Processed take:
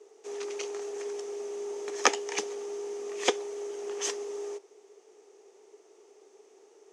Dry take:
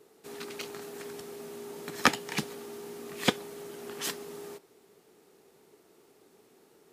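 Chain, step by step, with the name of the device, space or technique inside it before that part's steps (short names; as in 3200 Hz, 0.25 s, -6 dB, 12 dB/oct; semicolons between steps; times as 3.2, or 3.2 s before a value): phone speaker on a table (speaker cabinet 360–8000 Hz, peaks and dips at 410 Hz +9 dB, 790 Hz +3 dB, 1500 Hz -5 dB, 4100 Hz -6 dB, 6200 Hz +10 dB)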